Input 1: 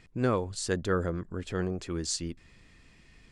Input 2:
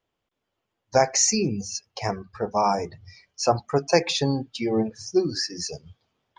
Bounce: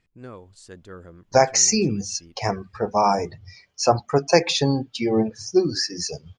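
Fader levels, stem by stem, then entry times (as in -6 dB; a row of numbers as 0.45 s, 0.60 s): -13.0 dB, +3.0 dB; 0.00 s, 0.40 s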